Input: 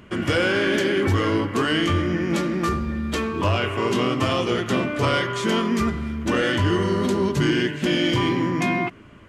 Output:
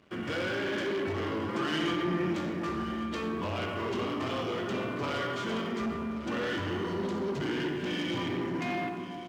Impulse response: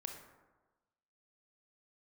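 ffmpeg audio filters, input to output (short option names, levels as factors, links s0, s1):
-filter_complex "[0:a]lowpass=5100[s0];[1:a]atrim=start_sample=2205,asetrate=30870,aresample=44100[s1];[s0][s1]afir=irnorm=-1:irlink=0,asoftclip=type=tanh:threshold=0.0841,asettb=1/sr,asplit=3[s2][s3][s4];[s2]atrim=end=1.484[s5];[s3]atrim=start=1.48:end=2.33,asetpts=PTS-STARTPTS,afade=t=in:d=0.004:c=qsin,afade=t=out:st=0.846:d=0.004:c=qsin,aecho=1:1:5.8:0.84,atrim=end_sample=37485[s6];[s4]atrim=start=2.326[s7];[s5][s6]acrossfade=d=0.004:c1=hsin:c2=qsin[s8];[s8][s7]acrossfade=d=0.004:c1=qsin:c2=hsin,aeval=exprs='sgn(val(0))*max(abs(val(0))-0.00266,0)':c=same,highpass=f=130:p=1,aecho=1:1:1128:0.2,volume=0.531"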